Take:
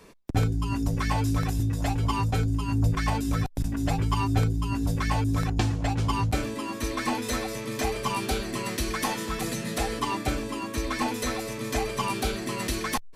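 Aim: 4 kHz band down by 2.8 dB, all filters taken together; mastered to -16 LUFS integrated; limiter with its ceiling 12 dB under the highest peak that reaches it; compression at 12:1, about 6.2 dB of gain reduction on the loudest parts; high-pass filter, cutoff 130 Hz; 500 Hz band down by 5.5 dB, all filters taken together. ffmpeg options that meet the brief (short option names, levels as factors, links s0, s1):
-af "highpass=130,equalizer=f=500:t=o:g=-7,equalizer=f=4000:t=o:g=-3.5,acompressor=threshold=0.0316:ratio=12,volume=14.1,alimiter=limit=0.422:level=0:latency=1"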